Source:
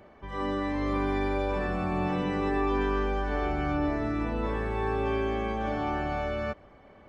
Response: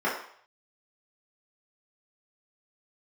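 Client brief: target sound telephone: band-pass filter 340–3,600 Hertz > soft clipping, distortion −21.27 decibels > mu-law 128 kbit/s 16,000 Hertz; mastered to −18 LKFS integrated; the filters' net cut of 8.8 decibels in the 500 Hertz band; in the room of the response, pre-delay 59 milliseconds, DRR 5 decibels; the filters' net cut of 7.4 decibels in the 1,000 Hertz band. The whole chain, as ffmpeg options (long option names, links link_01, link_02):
-filter_complex "[0:a]equalizer=frequency=500:width_type=o:gain=-8.5,equalizer=frequency=1000:width_type=o:gain=-6.5,asplit=2[link_01][link_02];[1:a]atrim=start_sample=2205,adelay=59[link_03];[link_02][link_03]afir=irnorm=-1:irlink=0,volume=-18.5dB[link_04];[link_01][link_04]amix=inputs=2:normalize=0,highpass=340,lowpass=3600,asoftclip=threshold=-28.5dB,volume=20dB" -ar 16000 -c:a pcm_mulaw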